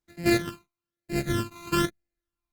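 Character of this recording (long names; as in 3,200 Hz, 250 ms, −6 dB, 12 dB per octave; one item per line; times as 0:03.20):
a buzz of ramps at a fixed pitch in blocks of 128 samples
phaser sweep stages 12, 1.1 Hz, lowest notch 540–1,100 Hz
Opus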